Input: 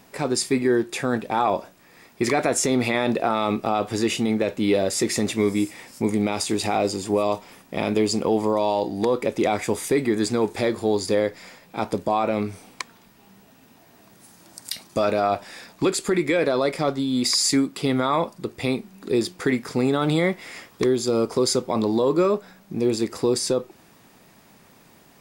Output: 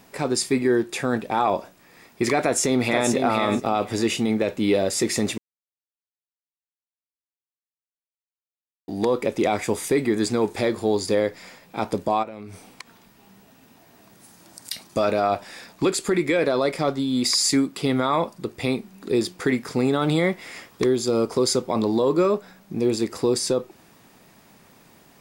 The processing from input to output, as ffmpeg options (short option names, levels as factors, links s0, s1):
-filter_complex "[0:a]asplit=2[s0][s1];[s1]afade=t=in:st=2.4:d=0.01,afade=t=out:st=3.11:d=0.01,aecho=0:1:480|960|1440:0.530884|0.0796327|0.0119449[s2];[s0][s2]amix=inputs=2:normalize=0,asplit=3[s3][s4][s5];[s3]afade=t=out:st=12.22:d=0.02[s6];[s4]acompressor=threshold=0.02:ratio=6:attack=3.2:release=140:knee=1:detection=peak,afade=t=in:st=12.22:d=0.02,afade=t=out:st=14.7:d=0.02[s7];[s5]afade=t=in:st=14.7:d=0.02[s8];[s6][s7][s8]amix=inputs=3:normalize=0,asplit=3[s9][s10][s11];[s9]atrim=end=5.38,asetpts=PTS-STARTPTS,afade=t=out:st=5.376:d=0.004:c=hsin[s12];[s10]atrim=start=5.38:end=8.88,asetpts=PTS-STARTPTS,volume=0[s13];[s11]atrim=start=8.88,asetpts=PTS-STARTPTS,afade=t=in:d=0.004:c=hsin[s14];[s12][s13][s14]concat=n=3:v=0:a=1"